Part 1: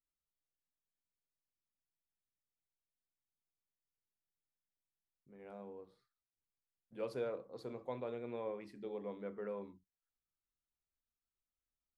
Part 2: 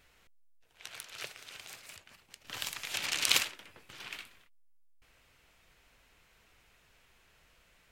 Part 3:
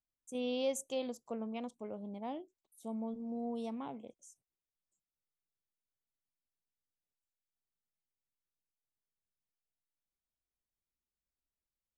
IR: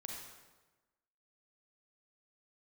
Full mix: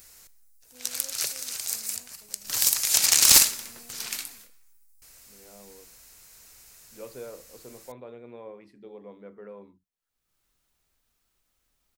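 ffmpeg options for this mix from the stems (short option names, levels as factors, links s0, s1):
-filter_complex "[0:a]volume=0.891[s0];[1:a]aexciter=amount=4.2:drive=8.7:freq=4500,aeval=exprs='0.299*(abs(mod(val(0)/0.299+3,4)-2)-1)':c=same,volume=1.41,asplit=2[s1][s2];[s2]volume=0.299[s3];[2:a]adelay=400,volume=0.119[s4];[3:a]atrim=start_sample=2205[s5];[s3][s5]afir=irnorm=-1:irlink=0[s6];[s0][s1][s4][s6]amix=inputs=4:normalize=0,acompressor=mode=upward:threshold=0.00158:ratio=2.5"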